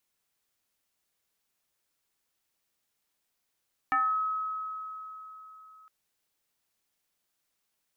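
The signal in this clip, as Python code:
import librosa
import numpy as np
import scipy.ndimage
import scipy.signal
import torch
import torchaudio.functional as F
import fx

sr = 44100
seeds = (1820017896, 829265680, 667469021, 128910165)

y = fx.fm2(sr, length_s=1.96, level_db=-22, carrier_hz=1280.0, ratio=0.39, index=1.3, index_s=0.44, decay_s=3.84, shape='exponential')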